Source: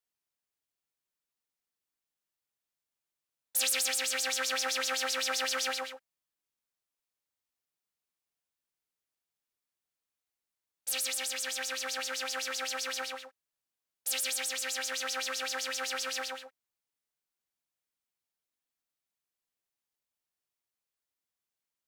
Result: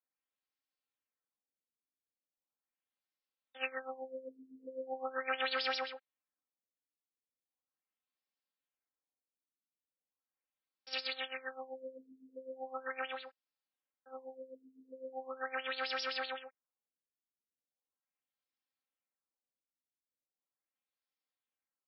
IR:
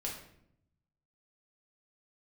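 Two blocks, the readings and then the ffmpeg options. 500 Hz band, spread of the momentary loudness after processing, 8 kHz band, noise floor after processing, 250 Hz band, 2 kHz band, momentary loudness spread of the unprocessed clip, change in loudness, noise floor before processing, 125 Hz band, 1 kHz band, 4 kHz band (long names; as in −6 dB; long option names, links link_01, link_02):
−1.5 dB, 18 LU, below −35 dB, below −85 dBFS, −2.5 dB, −6.5 dB, 8 LU, −8.5 dB, below −85 dBFS, can't be measured, −3.0 dB, −10.0 dB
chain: -af "highpass=frequency=220:poles=1,aecho=1:1:3.8:0.8,afftfilt=real='re*lt(b*sr/1024,450*pow(5700/450,0.5+0.5*sin(2*PI*0.39*pts/sr)))':imag='im*lt(b*sr/1024,450*pow(5700/450,0.5+0.5*sin(2*PI*0.39*pts/sr)))':win_size=1024:overlap=0.75,volume=-5dB"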